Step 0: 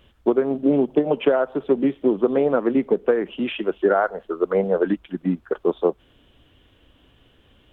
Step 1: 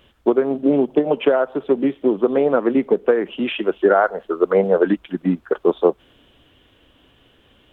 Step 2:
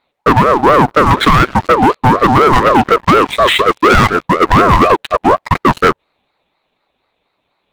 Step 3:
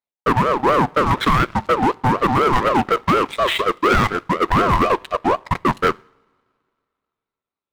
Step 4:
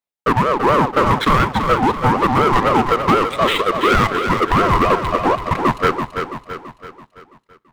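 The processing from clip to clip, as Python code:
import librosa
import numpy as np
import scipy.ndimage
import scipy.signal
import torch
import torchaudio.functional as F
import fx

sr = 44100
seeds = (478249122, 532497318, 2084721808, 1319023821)

y1 = fx.low_shelf(x, sr, hz=140.0, db=-7.5)
y1 = fx.rider(y1, sr, range_db=10, speed_s=2.0)
y1 = y1 * librosa.db_to_amplitude(3.5)
y2 = fx.leveller(y1, sr, passes=5)
y2 = fx.ring_lfo(y2, sr, carrier_hz=700.0, swing_pct=30, hz=4.1)
y2 = y2 * librosa.db_to_amplitude(1.0)
y3 = fx.rev_double_slope(y2, sr, seeds[0], early_s=0.61, late_s=3.5, knee_db=-18, drr_db=15.0)
y3 = fx.power_curve(y3, sr, exponent=1.4)
y3 = y3 * librosa.db_to_amplitude(-6.0)
y4 = fx.echo_feedback(y3, sr, ms=333, feedback_pct=48, wet_db=-7)
y4 = y4 * librosa.db_to_amplitude(1.0)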